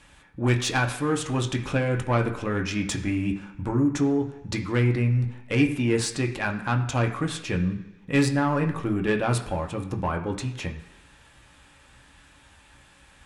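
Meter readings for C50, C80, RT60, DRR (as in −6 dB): 10.5 dB, 13.0 dB, 1.2 s, 2.0 dB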